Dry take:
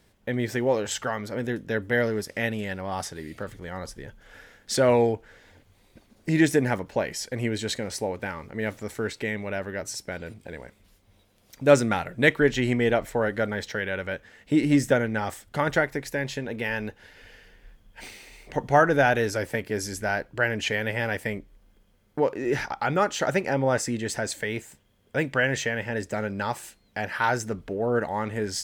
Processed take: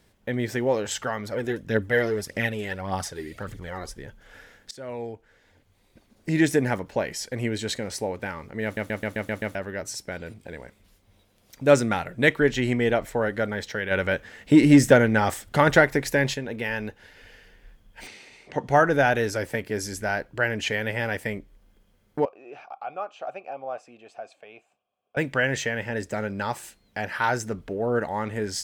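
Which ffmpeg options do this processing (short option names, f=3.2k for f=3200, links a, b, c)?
-filter_complex "[0:a]asplit=3[a][b][c];[a]afade=t=out:st=1.25:d=0.02[d];[b]aphaser=in_gain=1:out_gain=1:delay=3:decay=0.5:speed=1.7:type=triangular,afade=t=in:st=1.25:d=0.02,afade=t=out:st=3.92:d=0.02[e];[c]afade=t=in:st=3.92:d=0.02[f];[d][e][f]amix=inputs=3:normalize=0,asplit=3[g][h][i];[g]afade=t=out:st=13.9:d=0.02[j];[h]acontrast=72,afade=t=in:st=13.9:d=0.02,afade=t=out:st=16.33:d=0.02[k];[i]afade=t=in:st=16.33:d=0.02[l];[j][k][l]amix=inputs=3:normalize=0,asettb=1/sr,asplit=3[m][n][o];[m]atrim=end=18.074[p];[n]atrim=start=18.07:end=18.68,asetpts=PTS-STARTPTS,afade=t=in:d=0.004:c=qsin,afade=t=out:st=0.606:d=0.004:c=qsin,highpass=110,lowpass=6.7k[q];[o]atrim=start=18.676[r];[p][q]acrossfade=d=0.004:c1=hsin:c2=qsin[s];[s][r]acrossfade=d=0.004:c1=qsin:c2=hsin,asettb=1/sr,asplit=3[t][u][v];[t]atrim=end=22.254[w];[u]atrim=start=22.25:end=25.17,asetpts=PTS-STARTPTS,afade=t=in:d=0.004:c=qsin,afade=t=out:st=2.916:d=0.004:c=qsin,asplit=3[x][y][z];[x]bandpass=f=730:t=q:w=8,volume=0dB[aa];[y]bandpass=f=1.09k:t=q:w=8,volume=-6dB[ab];[z]bandpass=f=2.44k:t=q:w=8,volume=-9dB[ac];[aa][ab][ac]amix=inputs=3:normalize=0[ad];[v]atrim=start=25.166[ae];[w][ad]acrossfade=d=0.004:c1=hsin:c2=qsin[af];[af][ae]acrossfade=d=0.004:c1=qsin:c2=hsin,asplit=9[ag][ah][ai][aj][ak][al][am][an][ao];[ag]atrim=end=4.71,asetpts=PTS-STARTPTS,afade=t=out:st=4.706:d=0.004:c=hsin:silence=0.0668344[ap];[ah]atrim=start=4.71:end=8.772,asetpts=PTS-STARTPTS,afade=t=in:d=1.82:silence=0.0668344[aq];[ai]atrim=start=8.638:end=8.772[ar];[aj]atrim=start=8.638:end=8.772[as];[ak]atrim=start=8.638:end=8.772[at];[al]atrim=start=8.638:end=8.772[au];[am]atrim=start=8.638:end=8.772[av];[an]atrim=start=8.638:end=8.772[aw];[ao]atrim=start=9.548[ax];[ap][aq]concat=n=2:v=0:a=1[ay];[ay][ar]acrossfade=d=0.004:c1=hsin:c2=hsin[az];[az][as]acrossfade=d=0.004:c1=hsin:c2=hsin[ba];[ba][at]acrossfade=d=0.004:c1=hsin:c2=hsin[bb];[bb][au]acrossfade=d=0.004:c1=hsin:c2=hsin[bc];[bc][av]acrossfade=d=0.004:c1=hsin:c2=hsin[bd];[bd][aw]acrossfade=d=0.004:c1=hsin:c2=hsin[be];[be][ax]acrossfade=d=0.004:c1=hsin:c2=hsin"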